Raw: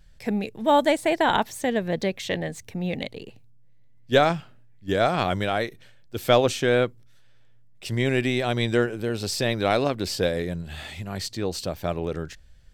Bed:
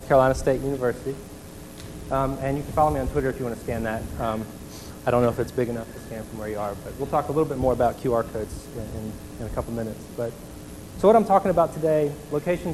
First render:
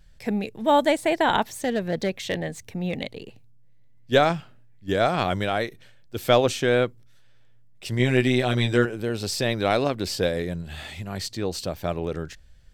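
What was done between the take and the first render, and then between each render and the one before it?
0:01.53–0:02.95: hard clipping −18 dBFS
0:07.98–0:08.85: double-tracking delay 16 ms −4 dB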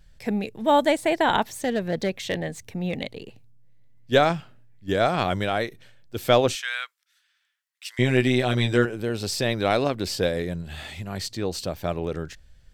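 0:06.55–0:07.99: high-pass filter 1,300 Hz 24 dB per octave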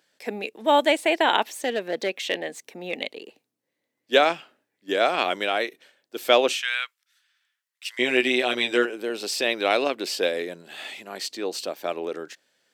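high-pass filter 290 Hz 24 dB per octave
dynamic equaliser 2,700 Hz, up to +8 dB, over −45 dBFS, Q 2.2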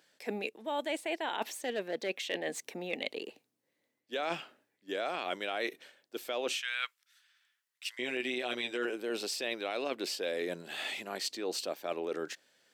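brickwall limiter −12.5 dBFS, peak gain reduction 8 dB
reversed playback
downward compressor 6 to 1, threshold −32 dBFS, peak gain reduction 14 dB
reversed playback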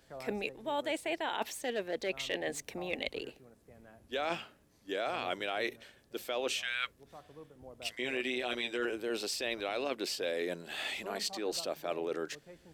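mix in bed −29.5 dB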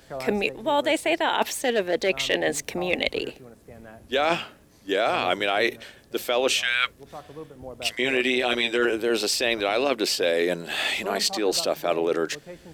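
level +12 dB

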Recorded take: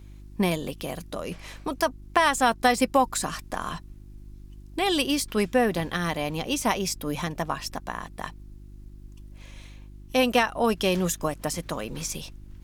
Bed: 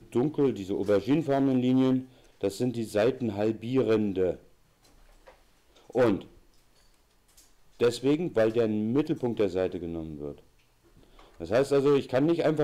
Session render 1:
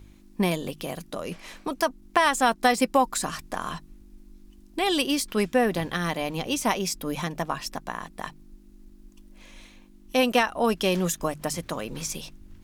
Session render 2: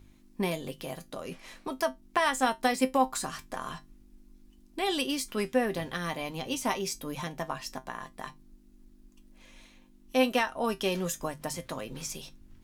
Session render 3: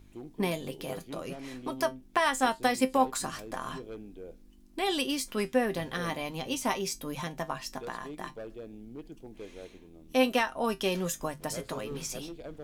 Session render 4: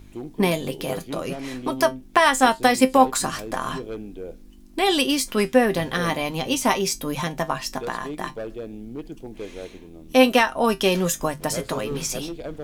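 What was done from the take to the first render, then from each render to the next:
hum removal 50 Hz, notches 3
tuned comb filter 130 Hz, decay 0.16 s, harmonics all, mix 70%
mix in bed −18.5 dB
level +9.5 dB; brickwall limiter −3 dBFS, peak gain reduction 1 dB

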